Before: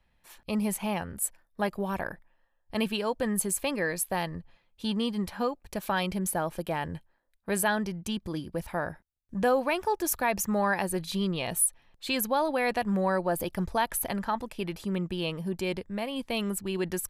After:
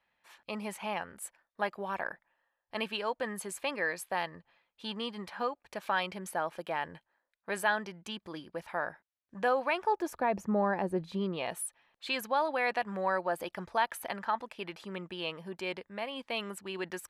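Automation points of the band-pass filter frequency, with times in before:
band-pass filter, Q 0.56
9.71 s 1.5 kHz
10.34 s 380 Hz
11.05 s 380 Hz
11.61 s 1.5 kHz

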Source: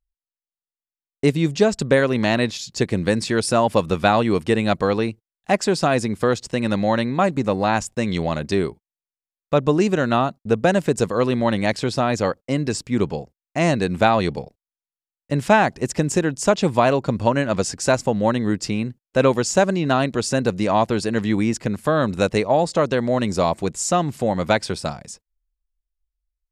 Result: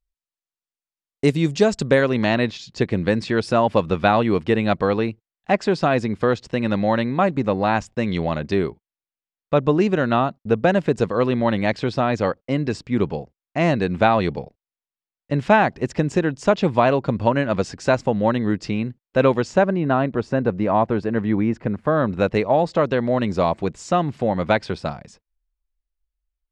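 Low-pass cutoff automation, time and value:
1.62 s 9 kHz
2.44 s 3.6 kHz
19.37 s 3.6 kHz
19.77 s 1.7 kHz
21.87 s 1.7 kHz
22.42 s 3.3 kHz

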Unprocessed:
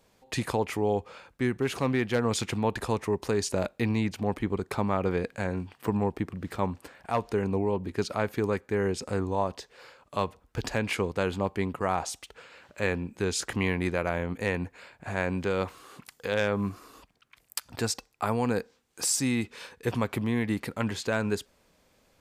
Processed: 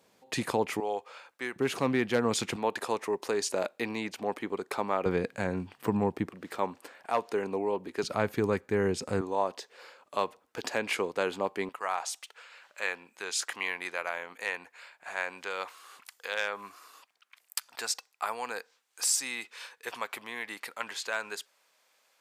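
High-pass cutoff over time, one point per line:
170 Hz
from 0.80 s 620 Hz
from 1.56 s 170 Hz
from 2.56 s 370 Hz
from 5.06 s 120 Hz
from 6.29 s 350 Hz
from 8.03 s 95 Hz
from 9.21 s 340 Hz
from 11.69 s 890 Hz

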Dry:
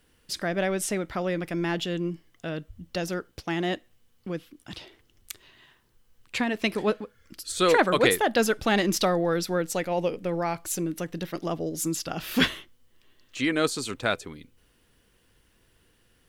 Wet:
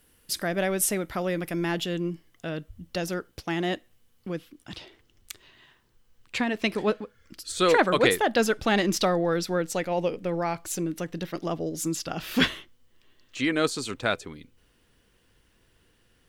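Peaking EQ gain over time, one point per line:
peaking EQ 12 kHz 0.74 oct
1.50 s +12 dB
2.11 s +3 dB
4.29 s +3 dB
4.76 s -4.5 dB

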